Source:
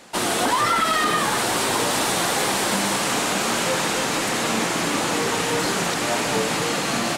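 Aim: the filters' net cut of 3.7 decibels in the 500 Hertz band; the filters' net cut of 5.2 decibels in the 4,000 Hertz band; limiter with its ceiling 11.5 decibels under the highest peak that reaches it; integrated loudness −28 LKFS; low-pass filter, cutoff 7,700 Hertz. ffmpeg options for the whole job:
ffmpeg -i in.wav -af "lowpass=7700,equalizer=frequency=500:width_type=o:gain=-4.5,equalizer=frequency=4000:width_type=o:gain=-6.5,volume=3dB,alimiter=limit=-20.5dB:level=0:latency=1" out.wav

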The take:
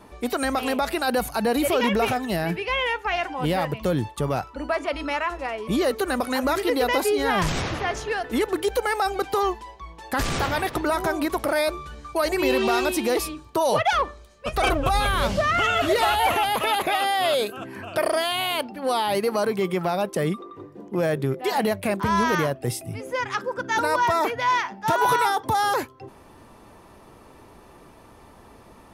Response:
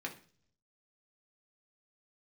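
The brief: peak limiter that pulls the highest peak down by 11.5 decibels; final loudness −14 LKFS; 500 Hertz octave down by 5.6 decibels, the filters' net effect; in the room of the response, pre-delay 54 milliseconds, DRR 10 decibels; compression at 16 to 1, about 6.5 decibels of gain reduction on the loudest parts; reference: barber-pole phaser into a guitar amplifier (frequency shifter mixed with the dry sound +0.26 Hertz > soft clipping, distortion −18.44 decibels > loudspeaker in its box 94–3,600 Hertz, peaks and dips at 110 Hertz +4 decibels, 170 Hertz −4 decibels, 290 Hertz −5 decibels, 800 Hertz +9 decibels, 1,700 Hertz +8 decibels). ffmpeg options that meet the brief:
-filter_complex "[0:a]equalizer=frequency=500:width_type=o:gain=-9,acompressor=threshold=-25dB:ratio=16,alimiter=level_in=3.5dB:limit=-24dB:level=0:latency=1,volume=-3.5dB,asplit=2[link_01][link_02];[1:a]atrim=start_sample=2205,adelay=54[link_03];[link_02][link_03]afir=irnorm=-1:irlink=0,volume=-11dB[link_04];[link_01][link_04]amix=inputs=2:normalize=0,asplit=2[link_05][link_06];[link_06]afreqshift=0.26[link_07];[link_05][link_07]amix=inputs=2:normalize=1,asoftclip=threshold=-32dB,highpass=94,equalizer=frequency=110:width_type=q:width=4:gain=4,equalizer=frequency=170:width_type=q:width=4:gain=-4,equalizer=frequency=290:width_type=q:width=4:gain=-5,equalizer=frequency=800:width_type=q:width=4:gain=9,equalizer=frequency=1700:width_type=q:width=4:gain=8,lowpass=frequency=3600:width=0.5412,lowpass=frequency=3600:width=1.3066,volume=23.5dB"

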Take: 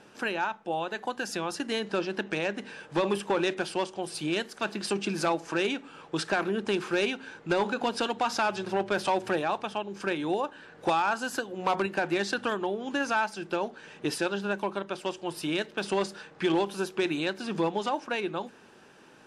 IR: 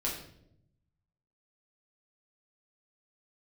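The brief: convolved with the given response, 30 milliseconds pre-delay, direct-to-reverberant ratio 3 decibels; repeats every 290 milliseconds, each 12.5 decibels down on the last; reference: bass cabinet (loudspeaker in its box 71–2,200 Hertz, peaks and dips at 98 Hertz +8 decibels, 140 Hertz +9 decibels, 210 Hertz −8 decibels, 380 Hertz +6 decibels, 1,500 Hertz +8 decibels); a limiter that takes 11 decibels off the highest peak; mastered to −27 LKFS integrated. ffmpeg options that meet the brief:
-filter_complex "[0:a]alimiter=level_in=5dB:limit=-24dB:level=0:latency=1,volume=-5dB,aecho=1:1:290|580|870:0.237|0.0569|0.0137,asplit=2[link_01][link_02];[1:a]atrim=start_sample=2205,adelay=30[link_03];[link_02][link_03]afir=irnorm=-1:irlink=0,volume=-7.5dB[link_04];[link_01][link_04]amix=inputs=2:normalize=0,highpass=frequency=71:width=0.5412,highpass=frequency=71:width=1.3066,equalizer=frequency=98:width_type=q:width=4:gain=8,equalizer=frequency=140:width_type=q:width=4:gain=9,equalizer=frequency=210:width_type=q:width=4:gain=-8,equalizer=frequency=380:width_type=q:width=4:gain=6,equalizer=frequency=1500:width_type=q:width=4:gain=8,lowpass=frequency=2200:width=0.5412,lowpass=frequency=2200:width=1.3066,volume=7dB"

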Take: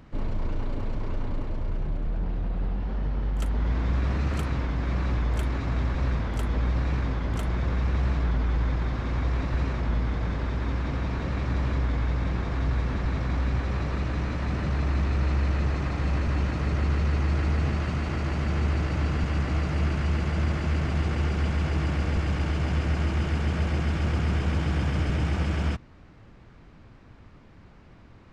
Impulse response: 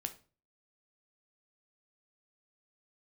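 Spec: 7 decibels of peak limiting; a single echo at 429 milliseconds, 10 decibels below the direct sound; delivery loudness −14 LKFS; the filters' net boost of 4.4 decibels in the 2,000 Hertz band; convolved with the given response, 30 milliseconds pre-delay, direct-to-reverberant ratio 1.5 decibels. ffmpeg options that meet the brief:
-filter_complex "[0:a]equalizer=frequency=2000:width_type=o:gain=5.5,alimiter=limit=-22dB:level=0:latency=1,aecho=1:1:429:0.316,asplit=2[link_01][link_02];[1:a]atrim=start_sample=2205,adelay=30[link_03];[link_02][link_03]afir=irnorm=-1:irlink=0,volume=-0.5dB[link_04];[link_01][link_04]amix=inputs=2:normalize=0,volume=14dB"

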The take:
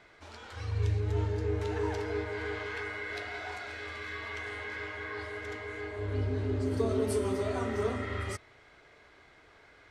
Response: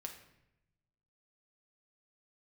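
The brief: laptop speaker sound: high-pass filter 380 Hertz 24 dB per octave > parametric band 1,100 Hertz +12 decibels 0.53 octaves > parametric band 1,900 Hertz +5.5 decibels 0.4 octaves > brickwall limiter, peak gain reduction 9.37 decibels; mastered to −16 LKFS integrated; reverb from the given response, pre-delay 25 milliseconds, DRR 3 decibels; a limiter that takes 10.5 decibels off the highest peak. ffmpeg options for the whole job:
-filter_complex "[0:a]alimiter=level_in=4dB:limit=-24dB:level=0:latency=1,volume=-4dB,asplit=2[link_01][link_02];[1:a]atrim=start_sample=2205,adelay=25[link_03];[link_02][link_03]afir=irnorm=-1:irlink=0,volume=0dB[link_04];[link_01][link_04]amix=inputs=2:normalize=0,highpass=frequency=380:width=0.5412,highpass=frequency=380:width=1.3066,equalizer=frequency=1100:width_type=o:width=0.53:gain=12,equalizer=frequency=1900:width_type=o:width=0.4:gain=5.5,volume=22.5dB,alimiter=limit=-7.5dB:level=0:latency=1"

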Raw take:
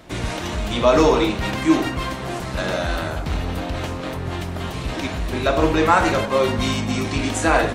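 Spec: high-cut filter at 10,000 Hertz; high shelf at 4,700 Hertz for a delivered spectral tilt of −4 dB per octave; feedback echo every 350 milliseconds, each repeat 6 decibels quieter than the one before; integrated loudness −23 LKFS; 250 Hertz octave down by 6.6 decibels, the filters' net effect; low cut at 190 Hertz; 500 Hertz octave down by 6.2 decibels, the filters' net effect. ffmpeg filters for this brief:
ffmpeg -i in.wav -af "highpass=190,lowpass=10000,equalizer=frequency=250:width_type=o:gain=-5,equalizer=frequency=500:width_type=o:gain=-6.5,highshelf=frequency=4700:gain=-5,aecho=1:1:350|700|1050|1400|1750|2100:0.501|0.251|0.125|0.0626|0.0313|0.0157,volume=1.5dB" out.wav

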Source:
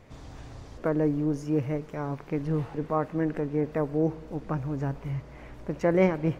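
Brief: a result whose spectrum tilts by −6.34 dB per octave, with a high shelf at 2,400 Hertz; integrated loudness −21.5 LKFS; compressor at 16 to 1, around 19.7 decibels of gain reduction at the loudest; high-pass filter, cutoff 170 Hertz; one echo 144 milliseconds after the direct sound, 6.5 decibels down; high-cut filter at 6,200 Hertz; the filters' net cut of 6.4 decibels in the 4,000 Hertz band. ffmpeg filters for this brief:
ffmpeg -i in.wav -af "highpass=170,lowpass=6200,highshelf=frequency=2400:gain=-3,equalizer=frequency=4000:width_type=o:gain=-6,acompressor=threshold=-38dB:ratio=16,aecho=1:1:144:0.473,volume=22dB" out.wav

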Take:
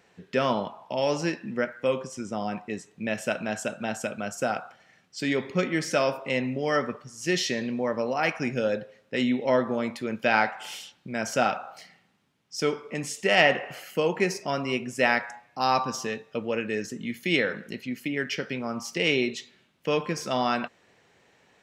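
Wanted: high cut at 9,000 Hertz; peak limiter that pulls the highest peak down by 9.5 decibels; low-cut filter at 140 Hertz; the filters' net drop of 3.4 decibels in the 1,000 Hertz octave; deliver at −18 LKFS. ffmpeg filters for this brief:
ffmpeg -i in.wav -af "highpass=140,lowpass=9000,equalizer=frequency=1000:width_type=o:gain=-5,volume=12dB,alimiter=limit=-3.5dB:level=0:latency=1" out.wav

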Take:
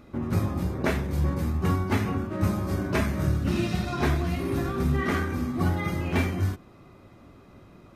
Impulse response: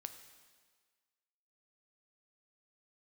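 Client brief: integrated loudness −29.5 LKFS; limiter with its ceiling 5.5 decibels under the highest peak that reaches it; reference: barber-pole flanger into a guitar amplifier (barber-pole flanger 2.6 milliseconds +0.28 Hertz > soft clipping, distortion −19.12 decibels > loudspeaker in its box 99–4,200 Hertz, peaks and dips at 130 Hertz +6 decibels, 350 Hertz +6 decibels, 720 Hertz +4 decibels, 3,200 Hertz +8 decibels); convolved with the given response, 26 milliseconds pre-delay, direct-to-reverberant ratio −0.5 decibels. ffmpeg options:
-filter_complex "[0:a]alimiter=limit=-18dB:level=0:latency=1,asplit=2[link_01][link_02];[1:a]atrim=start_sample=2205,adelay=26[link_03];[link_02][link_03]afir=irnorm=-1:irlink=0,volume=4.5dB[link_04];[link_01][link_04]amix=inputs=2:normalize=0,asplit=2[link_05][link_06];[link_06]adelay=2.6,afreqshift=0.28[link_07];[link_05][link_07]amix=inputs=2:normalize=1,asoftclip=threshold=-19dB,highpass=99,equalizer=frequency=130:width_type=q:width=4:gain=6,equalizer=frequency=350:width_type=q:width=4:gain=6,equalizer=frequency=720:width_type=q:width=4:gain=4,equalizer=frequency=3200:width_type=q:width=4:gain=8,lowpass=frequency=4200:width=0.5412,lowpass=frequency=4200:width=1.3066,volume=-1dB"

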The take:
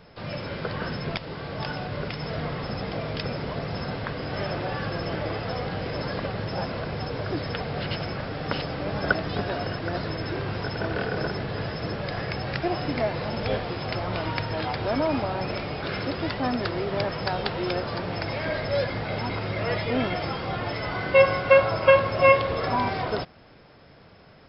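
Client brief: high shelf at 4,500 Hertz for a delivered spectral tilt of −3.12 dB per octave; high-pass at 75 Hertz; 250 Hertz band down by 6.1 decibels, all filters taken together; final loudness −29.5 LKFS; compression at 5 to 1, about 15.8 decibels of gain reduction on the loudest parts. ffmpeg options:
ffmpeg -i in.wav -af "highpass=75,equalizer=frequency=250:width_type=o:gain=-9,highshelf=frequency=4500:gain=5.5,acompressor=threshold=-30dB:ratio=5,volume=4.5dB" out.wav

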